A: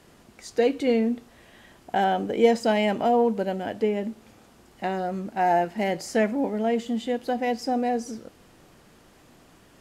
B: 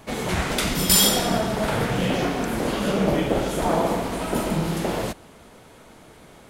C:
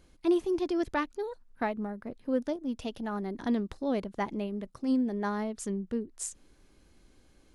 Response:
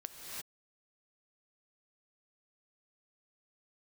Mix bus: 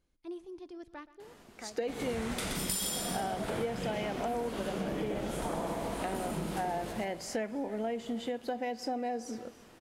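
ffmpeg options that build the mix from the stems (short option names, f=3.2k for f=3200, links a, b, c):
-filter_complex "[0:a]bass=f=250:g=-5,treble=f=4k:g=-2,adelay=1200,volume=-2dB,asplit=2[a][b];[b]volume=-15dB[c];[1:a]adynamicequalizer=threshold=0.00631:dfrequency=9100:dqfactor=2.7:tfrequency=9100:tqfactor=2.7:attack=5:release=100:ratio=0.375:range=3:mode=boostabove:tftype=bell,adelay=1800,volume=-7.5dB,asplit=3[d][e][f];[e]volume=-6.5dB[g];[f]volume=-3dB[h];[2:a]volume=-17.5dB,asplit=3[i][j][k];[j]volume=-16.5dB[l];[k]volume=-17dB[m];[3:a]atrim=start_sample=2205[n];[c][g][l]amix=inputs=3:normalize=0[o];[o][n]afir=irnorm=-1:irlink=0[p];[h][m]amix=inputs=2:normalize=0,aecho=0:1:125:1[q];[a][d][i][p][q]amix=inputs=5:normalize=0,acompressor=threshold=-32dB:ratio=6"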